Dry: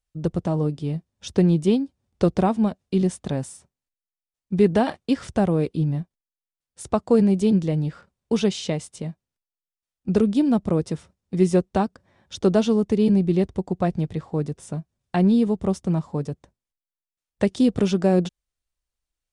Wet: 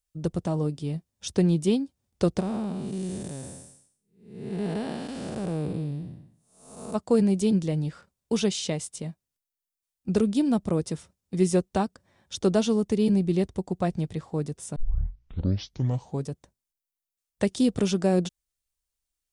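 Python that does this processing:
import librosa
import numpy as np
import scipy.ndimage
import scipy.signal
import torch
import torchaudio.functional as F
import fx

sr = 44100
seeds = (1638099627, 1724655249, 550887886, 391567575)

y = fx.spec_blur(x, sr, span_ms=386.0, at=(2.39, 6.94), fade=0.02)
y = fx.edit(y, sr, fx.tape_start(start_s=14.76, length_s=1.51), tone=tone)
y = fx.high_shelf(y, sr, hz=5300.0, db=11.5)
y = y * librosa.db_to_amplitude(-4.0)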